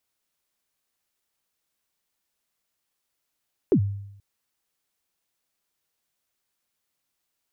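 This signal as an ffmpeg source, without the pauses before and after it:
-f lavfi -i "aevalsrc='0.224*pow(10,-3*t/0.8)*sin(2*PI*(450*0.079/log(100/450)*(exp(log(100/450)*min(t,0.079)/0.079)-1)+100*max(t-0.079,0)))':d=0.48:s=44100"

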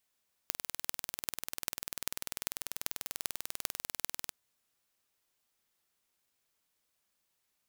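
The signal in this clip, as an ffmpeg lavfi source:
-f lavfi -i "aevalsrc='0.668*eq(mod(n,2172),0)*(0.5+0.5*eq(mod(n,17376),0))':d=3.82:s=44100"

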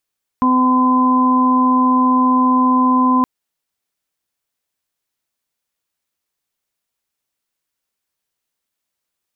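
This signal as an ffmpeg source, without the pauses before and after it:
-f lavfi -i "aevalsrc='0.224*sin(2*PI*255*t)+0.0299*sin(2*PI*510*t)+0.0376*sin(2*PI*765*t)+0.211*sin(2*PI*1020*t)':d=2.82:s=44100"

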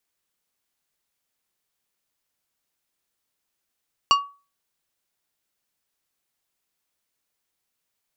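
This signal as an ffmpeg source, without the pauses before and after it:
-f lavfi -i "aevalsrc='0.282*pow(10,-3*t/0.33)*sin(2*PI*1130*t)+0.168*pow(10,-3*t/0.174)*sin(2*PI*2825*t)+0.1*pow(10,-3*t/0.125)*sin(2*PI*4520*t)+0.0596*pow(10,-3*t/0.107)*sin(2*PI*5650*t)+0.0355*pow(10,-3*t/0.089)*sin(2*PI*7345*t)':d=0.89:s=44100"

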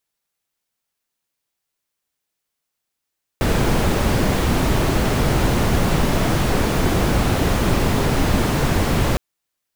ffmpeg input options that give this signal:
-f lavfi -i "anoisesrc=c=brown:a=0.661:d=5.76:r=44100:seed=1"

